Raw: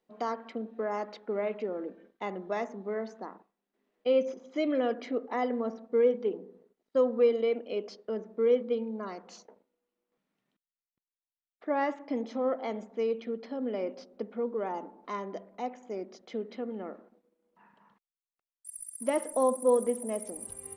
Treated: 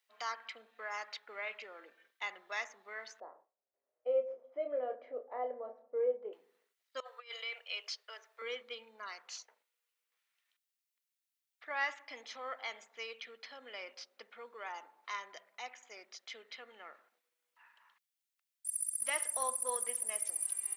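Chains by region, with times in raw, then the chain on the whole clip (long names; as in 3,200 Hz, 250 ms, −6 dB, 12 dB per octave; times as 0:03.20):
0:03.20–0:06.33: low-pass with resonance 570 Hz, resonance Q 4.5 + double-tracking delay 28 ms −6 dB
0:07.00–0:08.42: Bessel high-pass filter 740 Hz, order 8 + compressor whose output falls as the input rises −35 dBFS, ratio −0.5
whole clip: Chebyshev high-pass filter 2,000 Hz, order 2; high-shelf EQ 9,100 Hz +3.5 dB; level +5.5 dB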